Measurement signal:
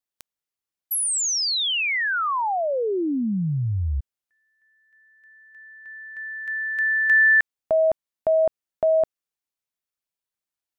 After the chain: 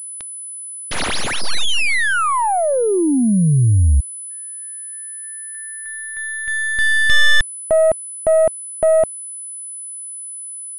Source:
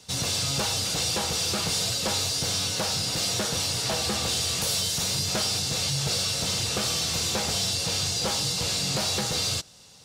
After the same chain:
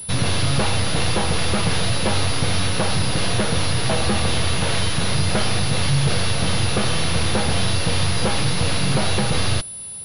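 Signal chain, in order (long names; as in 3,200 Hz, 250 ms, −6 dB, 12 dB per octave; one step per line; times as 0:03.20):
stylus tracing distortion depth 0.13 ms
low-shelf EQ 190 Hz +8 dB
soft clipping −12.5 dBFS
switching amplifier with a slow clock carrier 10,000 Hz
level +6.5 dB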